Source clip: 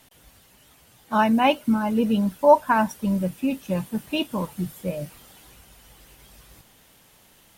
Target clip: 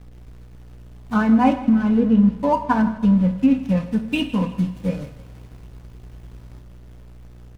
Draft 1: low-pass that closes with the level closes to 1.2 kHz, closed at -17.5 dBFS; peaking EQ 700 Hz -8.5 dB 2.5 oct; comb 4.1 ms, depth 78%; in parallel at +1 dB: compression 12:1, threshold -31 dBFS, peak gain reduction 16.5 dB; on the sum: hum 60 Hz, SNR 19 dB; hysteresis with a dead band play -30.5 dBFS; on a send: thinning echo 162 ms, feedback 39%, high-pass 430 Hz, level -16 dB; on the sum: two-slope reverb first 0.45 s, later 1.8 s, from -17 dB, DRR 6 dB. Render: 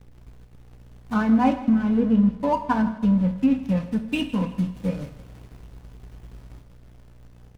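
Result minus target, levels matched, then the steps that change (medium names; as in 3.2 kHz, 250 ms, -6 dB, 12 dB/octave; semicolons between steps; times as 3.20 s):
compression: peak gain reduction +10.5 dB
change: compression 12:1, threshold -19.5 dBFS, peak gain reduction 6 dB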